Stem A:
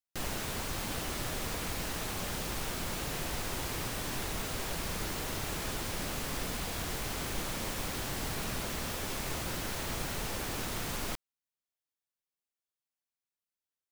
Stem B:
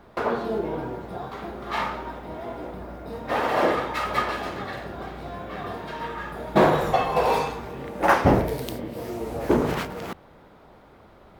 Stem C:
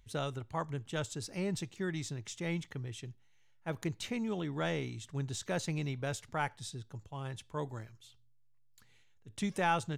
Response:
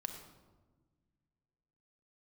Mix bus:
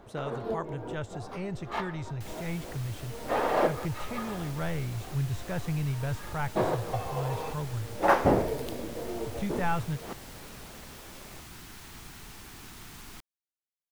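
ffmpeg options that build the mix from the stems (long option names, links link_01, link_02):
-filter_complex "[0:a]equalizer=frequency=550:width=2.8:gain=-13,adelay=2050,volume=-9.5dB[link_01];[1:a]equalizer=frequency=490:width_type=o:width=2:gain=5.5,volume=-5.5dB[link_02];[2:a]acrossover=split=2500[link_03][link_04];[link_04]acompressor=threshold=-54dB:ratio=4:attack=1:release=60[link_05];[link_03][link_05]amix=inputs=2:normalize=0,asubboost=boost=10:cutoff=89,volume=1dB,asplit=2[link_06][link_07];[link_07]apad=whole_len=502622[link_08];[link_02][link_08]sidechaincompress=threshold=-46dB:ratio=6:attack=27:release=180[link_09];[link_01][link_09][link_06]amix=inputs=3:normalize=0"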